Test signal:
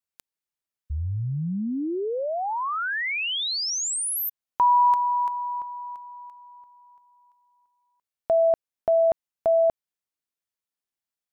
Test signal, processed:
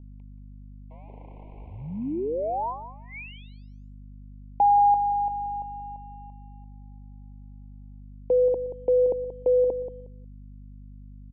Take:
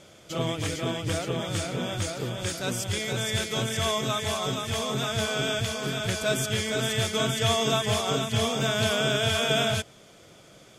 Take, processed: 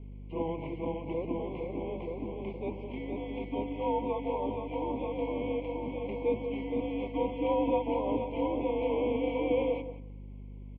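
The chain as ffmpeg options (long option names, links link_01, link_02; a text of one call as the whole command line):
ffmpeg -i in.wav -filter_complex "[0:a]asplit=2[link_01][link_02];[link_02]adelay=181,lowpass=frequency=1500:poles=1,volume=-10dB,asplit=2[link_03][link_04];[link_04]adelay=181,lowpass=frequency=1500:poles=1,volume=0.3,asplit=2[link_05][link_06];[link_06]adelay=181,lowpass=frequency=1500:poles=1,volume=0.3[link_07];[link_01][link_03][link_05][link_07]amix=inputs=4:normalize=0,acrossover=split=530|1300[link_08][link_09][link_10];[link_08]acrusher=bits=4:mode=log:mix=0:aa=0.000001[link_11];[link_09]aeval=exprs='sgn(val(0))*max(abs(val(0))-0.00251,0)':channel_layout=same[link_12];[link_11][link_12][link_10]amix=inputs=3:normalize=0,highpass=frequency=390:width_type=q:width=0.5412,highpass=frequency=390:width_type=q:width=1.307,lowpass=frequency=2100:width_type=q:width=0.5176,lowpass=frequency=2100:width_type=q:width=0.7071,lowpass=frequency=2100:width_type=q:width=1.932,afreqshift=-160,aeval=exprs='val(0)+0.00708*(sin(2*PI*50*n/s)+sin(2*PI*2*50*n/s)/2+sin(2*PI*3*50*n/s)/3+sin(2*PI*4*50*n/s)/4+sin(2*PI*5*50*n/s)/5)':channel_layout=same,asuperstop=centerf=1500:order=12:qfactor=1.2" out.wav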